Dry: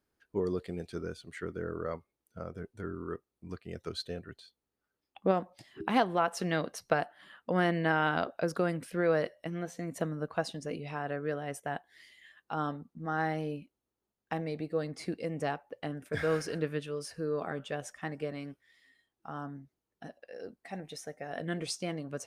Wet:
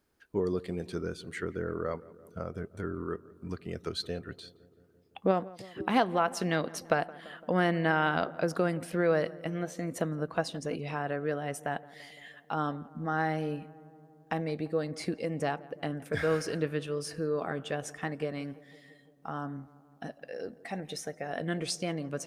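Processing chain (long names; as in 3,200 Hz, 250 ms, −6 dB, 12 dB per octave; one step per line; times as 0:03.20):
in parallel at +1 dB: downward compressor, threshold −43 dBFS, peak gain reduction 20.5 dB
on the sum: feedback echo with a low-pass in the loop 170 ms, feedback 74%, low-pass 1,600 Hz, level −19.5 dB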